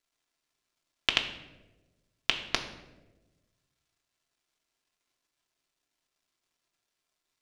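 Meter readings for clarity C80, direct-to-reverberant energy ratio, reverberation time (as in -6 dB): 11.5 dB, 2.5 dB, 1.1 s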